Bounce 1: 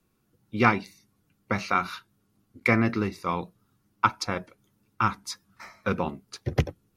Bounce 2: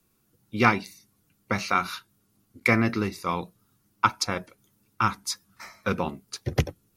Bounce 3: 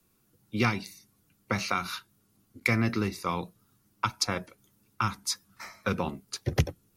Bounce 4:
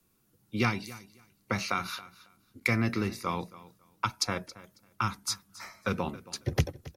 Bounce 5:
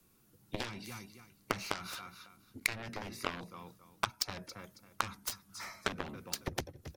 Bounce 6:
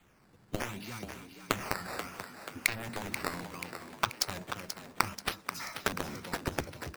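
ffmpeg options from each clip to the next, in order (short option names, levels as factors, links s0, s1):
-af "highshelf=f=4700:g=9.5"
-filter_complex "[0:a]acrossover=split=180|3000[s0][s1][s2];[s1]acompressor=threshold=0.0501:ratio=6[s3];[s0][s3][s2]amix=inputs=3:normalize=0"
-af "aecho=1:1:274|548:0.119|0.0214,volume=0.841"
-af "acompressor=threshold=0.0158:ratio=12,aeval=exprs='0.0944*(cos(1*acos(clip(val(0)/0.0944,-1,1)))-cos(1*PI/2))+0.0211*(cos(7*acos(clip(val(0)/0.0944,-1,1)))-cos(7*PI/2))':c=same,volume=2.37"
-filter_complex "[0:a]acrusher=samples=8:mix=1:aa=0.000001:lfo=1:lforange=12.8:lforate=0.67,asplit=8[s0][s1][s2][s3][s4][s5][s6][s7];[s1]adelay=484,afreqshift=69,volume=0.355[s8];[s2]adelay=968,afreqshift=138,volume=0.202[s9];[s3]adelay=1452,afreqshift=207,volume=0.115[s10];[s4]adelay=1936,afreqshift=276,volume=0.0661[s11];[s5]adelay=2420,afreqshift=345,volume=0.0376[s12];[s6]adelay=2904,afreqshift=414,volume=0.0214[s13];[s7]adelay=3388,afreqshift=483,volume=0.0122[s14];[s0][s8][s9][s10][s11][s12][s13][s14]amix=inputs=8:normalize=0,volume=1.5"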